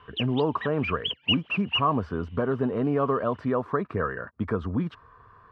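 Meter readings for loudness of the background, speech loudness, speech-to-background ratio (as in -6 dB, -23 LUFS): -29.5 LUFS, -28.0 LUFS, 1.5 dB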